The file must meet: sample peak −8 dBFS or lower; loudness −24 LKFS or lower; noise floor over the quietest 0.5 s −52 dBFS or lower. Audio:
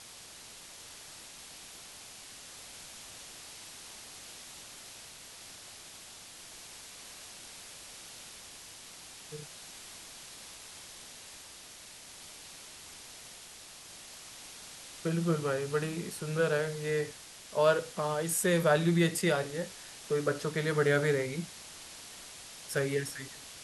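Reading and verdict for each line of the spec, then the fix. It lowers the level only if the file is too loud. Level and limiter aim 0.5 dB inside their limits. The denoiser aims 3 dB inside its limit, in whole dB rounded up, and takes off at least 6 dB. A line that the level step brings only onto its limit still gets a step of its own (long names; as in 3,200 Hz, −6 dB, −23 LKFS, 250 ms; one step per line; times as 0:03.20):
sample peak −13.5 dBFS: in spec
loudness −32.0 LKFS: in spec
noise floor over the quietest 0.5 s −50 dBFS: out of spec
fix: broadband denoise 6 dB, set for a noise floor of −50 dBFS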